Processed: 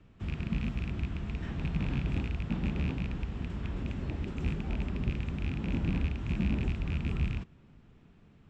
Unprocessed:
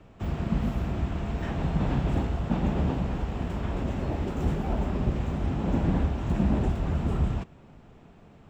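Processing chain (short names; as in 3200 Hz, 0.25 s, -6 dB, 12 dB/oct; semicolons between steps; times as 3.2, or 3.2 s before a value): rattling part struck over -24 dBFS, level -24 dBFS; Bessel low-pass 5700 Hz, order 2; bell 690 Hz -10.5 dB 1.5 oct; gain -4.5 dB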